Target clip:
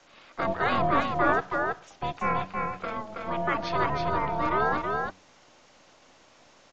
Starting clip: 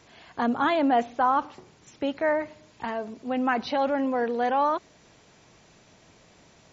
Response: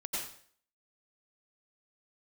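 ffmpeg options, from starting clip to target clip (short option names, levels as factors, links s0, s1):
-filter_complex "[0:a]aeval=exprs='val(0)*sin(2*PI*430*n/s)':c=same,lowshelf=f=68:g=-9.5,asplit=3[s0][s1][s2];[s1]asetrate=22050,aresample=44100,atempo=2,volume=0.355[s3];[s2]asetrate=35002,aresample=44100,atempo=1.25992,volume=0.178[s4];[s0][s3][s4]amix=inputs=3:normalize=0,acrossover=split=360|960[s5][s6][s7];[s5]aeval=exprs='max(val(0),0)':c=same[s8];[s8][s6][s7]amix=inputs=3:normalize=0,bandreject=f=94.06:t=h:w=4,bandreject=f=188.12:t=h:w=4,bandreject=f=282.18:t=h:w=4,asplit=2[s9][s10];[s10]aecho=0:1:324:0.668[s11];[s9][s11]amix=inputs=2:normalize=0,aresample=16000,aresample=44100,volume=1.12"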